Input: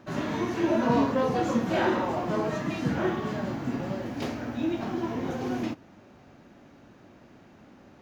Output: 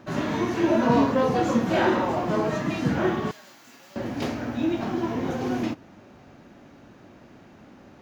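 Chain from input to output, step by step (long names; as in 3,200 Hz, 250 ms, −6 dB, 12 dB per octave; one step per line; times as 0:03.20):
0:03.31–0:03.96: first difference
level +3.5 dB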